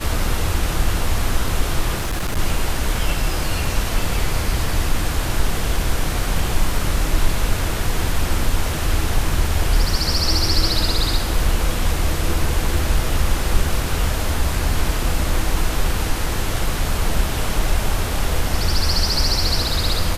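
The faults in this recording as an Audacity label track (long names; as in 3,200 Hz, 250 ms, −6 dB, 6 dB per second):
1.970000	2.390000	clipping −18 dBFS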